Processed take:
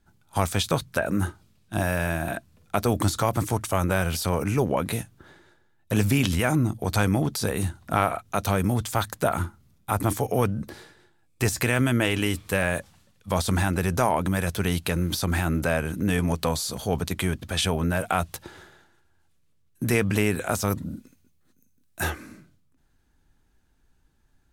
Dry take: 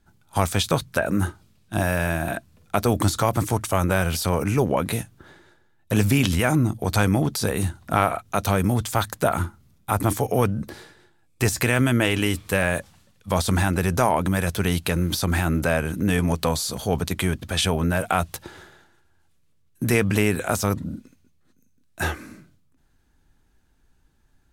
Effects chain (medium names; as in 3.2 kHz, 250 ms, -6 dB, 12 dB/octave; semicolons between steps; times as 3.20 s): 20.67–22.10 s: treble shelf 9.8 kHz +10 dB; trim -2.5 dB